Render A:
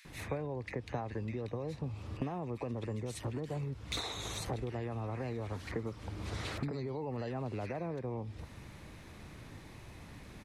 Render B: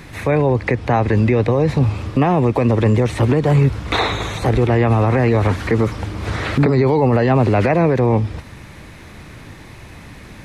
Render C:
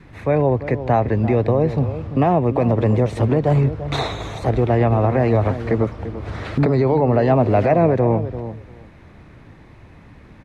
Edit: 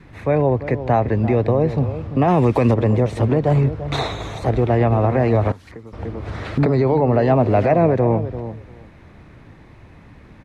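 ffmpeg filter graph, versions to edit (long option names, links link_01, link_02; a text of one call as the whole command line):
ffmpeg -i take0.wav -i take1.wav -i take2.wav -filter_complex "[2:a]asplit=3[link_01][link_02][link_03];[link_01]atrim=end=2.282[link_04];[1:a]atrim=start=2.278:end=2.742[link_05];[link_02]atrim=start=2.738:end=5.522[link_06];[0:a]atrim=start=5.518:end=5.932[link_07];[link_03]atrim=start=5.928[link_08];[link_04][link_05]acrossfade=duration=0.004:curve1=hsin:curve2=hsin[link_09];[link_09][link_06]acrossfade=duration=0.004:curve1=hsin:curve2=hsin[link_10];[link_10][link_07]acrossfade=duration=0.004:curve1=hsin:curve2=hsin[link_11];[link_11][link_08]acrossfade=duration=0.004:curve1=hsin:curve2=hsin" out.wav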